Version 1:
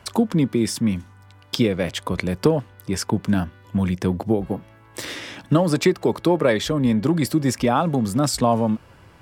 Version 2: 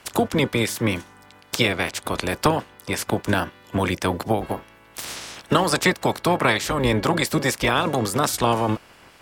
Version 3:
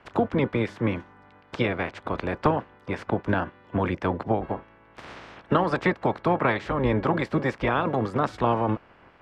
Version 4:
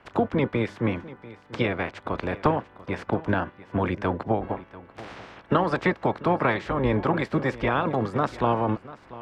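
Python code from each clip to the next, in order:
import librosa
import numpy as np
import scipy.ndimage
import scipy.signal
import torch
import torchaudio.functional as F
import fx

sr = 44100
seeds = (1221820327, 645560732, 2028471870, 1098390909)

y1 = fx.spec_clip(x, sr, under_db=21)
y1 = y1 * librosa.db_to_amplitude(-1.0)
y2 = scipy.signal.sosfilt(scipy.signal.butter(2, 1800.0, 'lowpass', fs=sr, output='sos'), y1)
y2 = y2 * librosa.db_to_amplitude(-2.5)
y3 = y2 + 10.0 ** (-18.0 / 20.0) * np.pad(y2, (int(691 * sr / 1000.0), 0))[:len(y2)]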